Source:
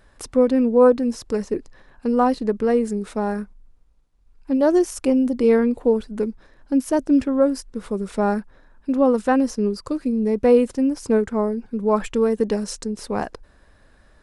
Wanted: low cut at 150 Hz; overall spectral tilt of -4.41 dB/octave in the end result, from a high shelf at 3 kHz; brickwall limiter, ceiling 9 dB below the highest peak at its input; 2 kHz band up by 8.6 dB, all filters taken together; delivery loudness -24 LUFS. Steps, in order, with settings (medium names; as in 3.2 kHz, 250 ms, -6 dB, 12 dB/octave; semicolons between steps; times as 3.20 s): high-pass 150 Hz; peaking EQ 2 kHz +9 dB; treble shelf 3 kHz +7.5 dB; trim -1.5 dB; peak limiter -13.5 dBFS